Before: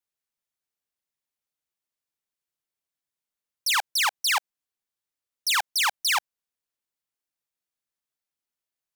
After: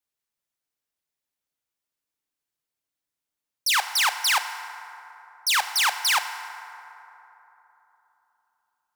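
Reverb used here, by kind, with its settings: FDN reverb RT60 3.5 s, high-frequency decay 0.4×, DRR 8 dB; trim +1.5 dB

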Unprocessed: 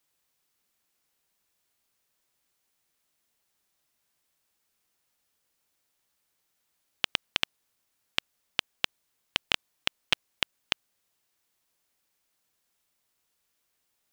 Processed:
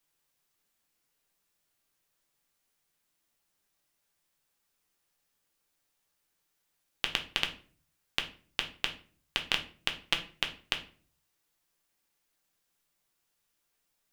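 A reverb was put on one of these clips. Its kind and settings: simulated room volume 32 m³, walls mixed, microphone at 0.36 m; trim -3 dB

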